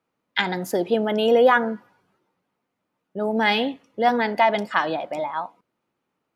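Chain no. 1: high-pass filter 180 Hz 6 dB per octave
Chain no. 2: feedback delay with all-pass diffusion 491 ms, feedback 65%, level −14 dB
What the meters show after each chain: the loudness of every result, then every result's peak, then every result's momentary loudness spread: −22.5, −22.0 LKFS; −4.5, −4.5 dBFS; 13, 18 LU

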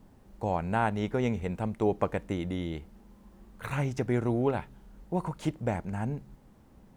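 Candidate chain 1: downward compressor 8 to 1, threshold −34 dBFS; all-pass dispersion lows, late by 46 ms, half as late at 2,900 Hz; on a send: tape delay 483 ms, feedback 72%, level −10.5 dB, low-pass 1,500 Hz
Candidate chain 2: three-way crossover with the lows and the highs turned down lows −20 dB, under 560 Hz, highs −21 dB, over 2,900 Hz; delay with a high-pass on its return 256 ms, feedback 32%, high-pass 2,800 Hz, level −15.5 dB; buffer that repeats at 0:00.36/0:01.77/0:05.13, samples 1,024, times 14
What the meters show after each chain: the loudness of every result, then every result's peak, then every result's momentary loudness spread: −40.5, −39.5 LKFS; −22.0, −16.0 dBFS; 11, 14 LU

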